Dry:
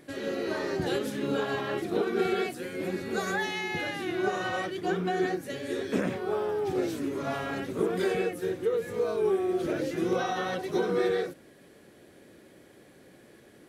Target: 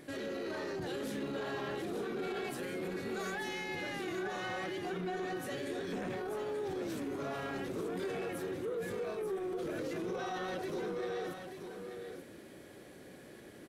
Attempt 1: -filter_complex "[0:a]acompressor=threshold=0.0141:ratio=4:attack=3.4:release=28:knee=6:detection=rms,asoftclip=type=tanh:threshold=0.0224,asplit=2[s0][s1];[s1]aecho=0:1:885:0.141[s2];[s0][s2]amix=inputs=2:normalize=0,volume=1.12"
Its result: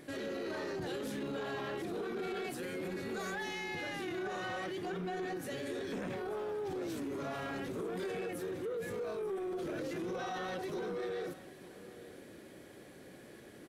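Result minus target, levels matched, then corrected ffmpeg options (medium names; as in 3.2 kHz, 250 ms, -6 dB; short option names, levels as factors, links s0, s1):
echo-to-direct -9.5 dB
-filter_complex "[0:a]acompressor=threshold=0.0141:ratio=4:attack=3.4:release=28:knee=6:detection=rms,asoftclip=type=tanh:threshold=0.0224,asplit=2[s0][s1];[s1]aecho=0:1:885:0.422[s2];[s0][s2]amix=inputs=2:normalize=0,volume=1.12"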